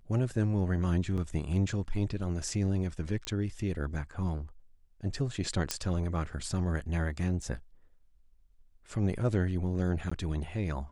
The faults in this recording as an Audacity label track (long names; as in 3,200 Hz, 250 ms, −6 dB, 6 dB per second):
1.170000	1.180000	drop-out 7 ms
3.250000	3.250000	click −20 dBFS
5.710000	5.710000	click −12 dBFS
7.420000	7.420000	drop-out 3.4 ms
10.100000	10.120000	drop-out 15 ms